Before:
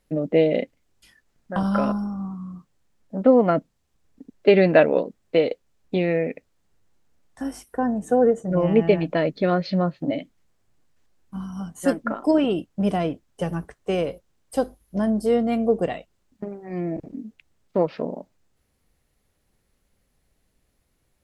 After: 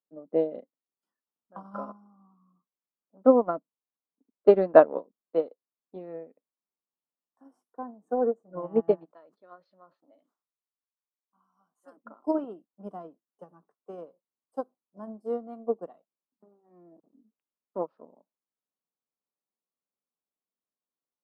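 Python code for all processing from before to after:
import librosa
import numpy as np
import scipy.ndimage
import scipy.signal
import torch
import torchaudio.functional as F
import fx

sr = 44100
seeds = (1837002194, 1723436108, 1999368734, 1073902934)

y = fx.chain(x, sr, fx.highpass(hz=1300.0, slope=6),
    fx.sustainer(db_per_s=130.0), at=(9.05, 11.97))
y = scipy.signal.sosfilt(scipy.signal.butter(4, 200.0, 'highpass', fs=sr, output='sos'), y)
y = fx.high_shelf_res(y, sr, hz=1600.0, db=-11.5, q=3.0)
y = fx.upward_expand(y, sr, threshold_db=-27.0, expansion=2.5)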